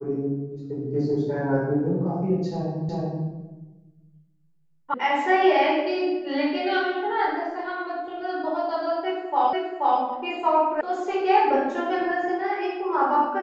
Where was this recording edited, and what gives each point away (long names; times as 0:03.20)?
0:02.89: the same again, the last 0.38 s
0:04.94: cut off before it has died away
0:09.53: the same again, the last 0.48 s
0:10.81: cut off before it has died away